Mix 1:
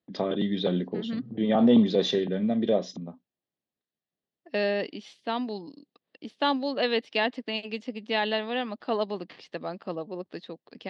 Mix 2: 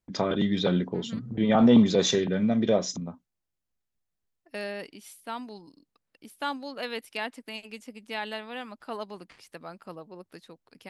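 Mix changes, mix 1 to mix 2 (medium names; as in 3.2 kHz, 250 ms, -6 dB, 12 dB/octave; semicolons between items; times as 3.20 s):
second voice -10.0 dB; master: remove cabinet simulation 180–4200 Hz, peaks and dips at 960 Hz -6 dB, 1.4 kHz -10 dB, 2.3 kHz -7 dB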